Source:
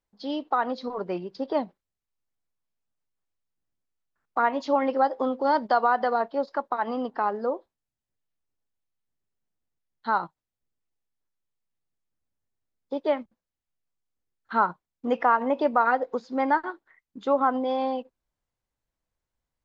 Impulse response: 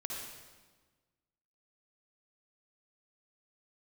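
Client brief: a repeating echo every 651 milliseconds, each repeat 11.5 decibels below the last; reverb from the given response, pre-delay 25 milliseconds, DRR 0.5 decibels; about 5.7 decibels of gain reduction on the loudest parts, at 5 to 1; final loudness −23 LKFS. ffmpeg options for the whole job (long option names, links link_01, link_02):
-filter_complex "[0:a]acompressor=threshold=-23dB:ratio=5,aecho=1:1:651|1302|1953:0.266|0.0718|0.0194,asplit=2[link_01][link_02];[1:a]atrim=start_sample=2205,adelay=25[link_03];[link_02][link_03]afir=irnorm=-1:irlink=0,volume=-1.5dB[link_04];[link_01][link_04]amix=inputs=2:normalize=0,volume=5dB"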